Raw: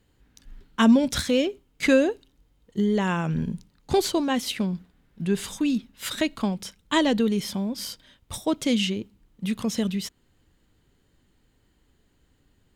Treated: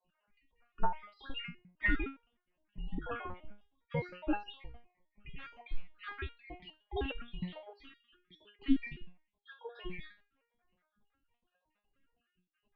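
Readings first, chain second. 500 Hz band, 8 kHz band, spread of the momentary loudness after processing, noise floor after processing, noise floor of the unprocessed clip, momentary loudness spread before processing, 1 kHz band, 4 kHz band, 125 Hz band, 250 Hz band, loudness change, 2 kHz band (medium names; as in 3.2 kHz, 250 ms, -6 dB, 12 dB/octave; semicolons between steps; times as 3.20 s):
-19.5 dB, under -40 dB, 21 LU, -85 dBFS, -66 dBFS, 14 LU, -11.0 dB, -19.5 dB, -14.0 dB, -17.5 dB, -14.5 dB, -9.0 dB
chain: random holes in the spectrogram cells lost 63%; mistuned SSB -240 Hz 250–3000 Hz; resonator arpeggio 9.7 Hz 180–470 Hz; trim +10.5 dB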